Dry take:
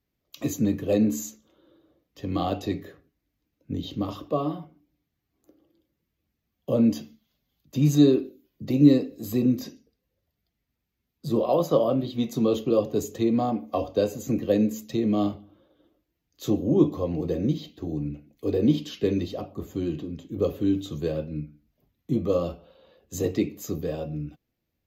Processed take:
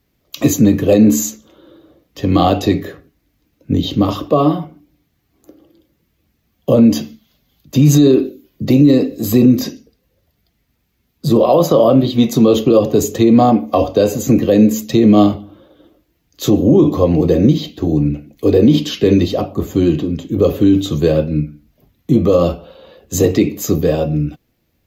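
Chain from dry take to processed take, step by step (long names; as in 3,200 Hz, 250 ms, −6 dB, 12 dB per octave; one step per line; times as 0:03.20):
boost into a limiter +16.5 dB
level −1 dB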